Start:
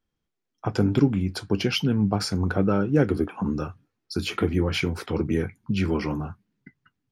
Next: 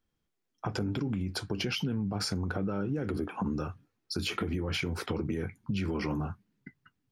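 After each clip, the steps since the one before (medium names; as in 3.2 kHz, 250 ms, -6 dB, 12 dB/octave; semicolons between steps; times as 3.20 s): peak limiter -19 dBFS, peak gain reduction 11 dB; compression, threshold -28 dBFS, peak gain reduction 6 dB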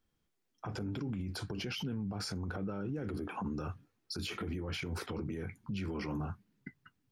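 peak limiter -31.5 dBFS, peak gain reduction 11 dB; trim +1 dB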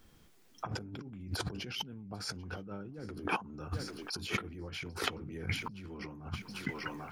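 thinning echo 793 ms, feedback 46%, high-pass 690 Hz, level -17 dB; compressor with a negative ratio -46 dBFS, ratio -0.5; trim +8.5 dB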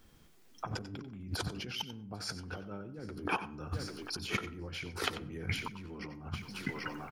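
delay 92 ms -13 dB; on a send at -22 dB: reverberation RT60 0.65 s, pre-delay 60 ms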